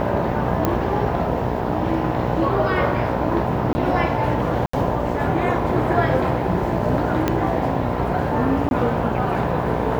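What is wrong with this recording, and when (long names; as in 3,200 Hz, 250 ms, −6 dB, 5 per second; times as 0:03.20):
mains buzz 60 Hz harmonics 17 −25 dBFS
0:00.65: click −6 dBFS
0:03.73–0:03.75: drop-out 20 ms
0:04.66–0:04.73: drop-out 74 ms
0:07.28: click −6 dBFS
0:08.69–0:08.71: drop-out 21 ms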